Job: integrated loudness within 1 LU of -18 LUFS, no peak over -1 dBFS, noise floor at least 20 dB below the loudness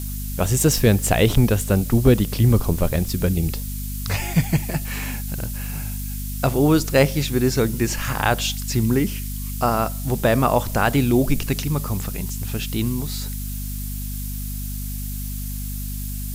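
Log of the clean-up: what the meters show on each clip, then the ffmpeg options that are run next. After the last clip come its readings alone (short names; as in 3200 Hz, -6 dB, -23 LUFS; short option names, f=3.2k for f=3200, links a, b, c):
hum 50 Hz; harmonics up to 250 Hz; hum level -26 dBFS; noise floor -28 dBFS; noise floor target -42 dBFS; loudness -22.0 LUFS; peak -3.0 dBFS; loudness target -18.0 LUFS
-> -af "bandreject=f=50:t=h:w=6,bandreject=f=100:t=h:w=6,bandreject=f=150:t=h:w=6,bandreject=f=200:t=h:w=6,bandreject=f=250:t=h:w=6"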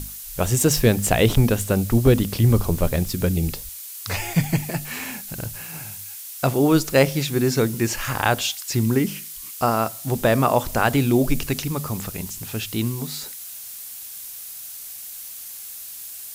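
hum none; noise floor -37 dBFS; noise floor target -42 dBFS
-> -af "afftdn=nr=6:nf=-37"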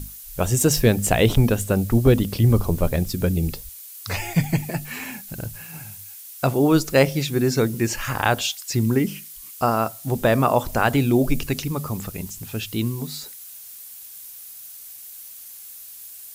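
noise floor -41 dBFS; noise floor target -42 dBFS
-> -af "afftdn=nr=6:nf=-41"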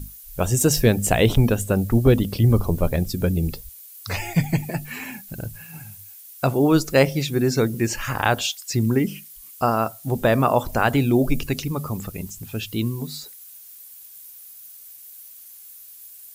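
noise floor -44 dBFS; loudness -21.5 LUFS; peak -3.0 dBFS; loudness target -18.0 LUFS
-> -af "volume=3.5dB,alimiter=limit=-1dB:level=0:latency=1"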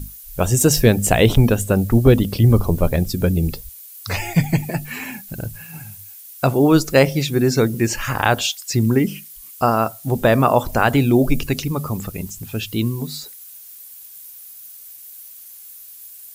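loudness -18.0 LUFS; peak -1.0 dBFS; noise floor -40 dBFS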